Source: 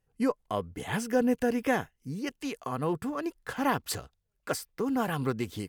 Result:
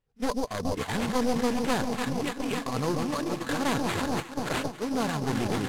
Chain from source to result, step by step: one-sided fold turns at -27 dBFS; echo with dull and thin repeats by turns 0.141 s, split 950 Hz, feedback 90%, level -8.5 dB; in parallel at +0.5 dB: negative-ratio compressor -35 dBFS, ratio -0.5; on the sum: sample-rate reducer 5500 Hz, jitter 20%; LPF 11000 Hz 12 dB/oct; reverse echo 34 ms -17 dB; gate -27 dBFS, range -13 dB

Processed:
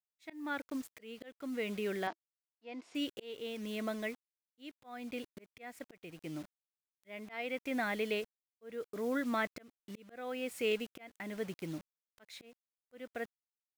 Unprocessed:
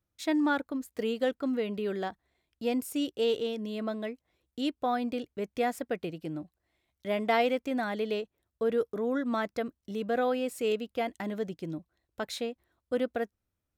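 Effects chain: bell 2200 Hz +10.5 dB 0.79 oct; bit-crush 8-bit; auto swell 0.501 s; 2.07–2.95 speaker cabinet 250–5600 Hz, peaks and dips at 330 Hz +8 dB, 660 Hz +6 dB, 1000 Hz +6 dB; gain -4.5 dB

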